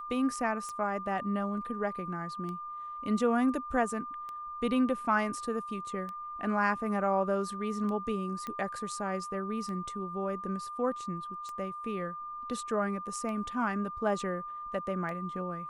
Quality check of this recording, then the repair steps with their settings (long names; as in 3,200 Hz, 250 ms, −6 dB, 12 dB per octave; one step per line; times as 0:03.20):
scratch tick 33 1/3 rpm −28 dBFS
whistle 1,200 Hz −38 dBFS
0:08.47: click −24 dBFS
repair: click removal
notch filter 1,200 Hz, Q 30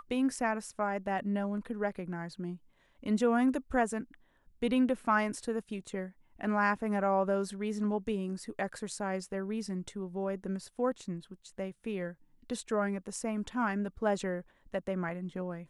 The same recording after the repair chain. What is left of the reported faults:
none of them is left